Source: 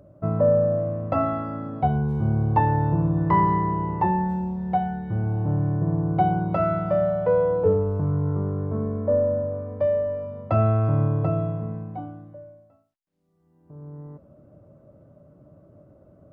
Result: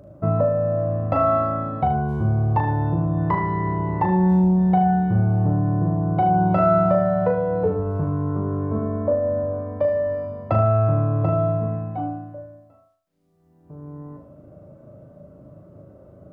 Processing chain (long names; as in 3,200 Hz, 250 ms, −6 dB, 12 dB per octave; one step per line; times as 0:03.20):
downward compressor, threshold −22 dBFS, peak gain reduction 7.5 dB
on a send: flutter between parallel walls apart 6.5 metres, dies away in 0.46 s
on the sum: level +4.5 dB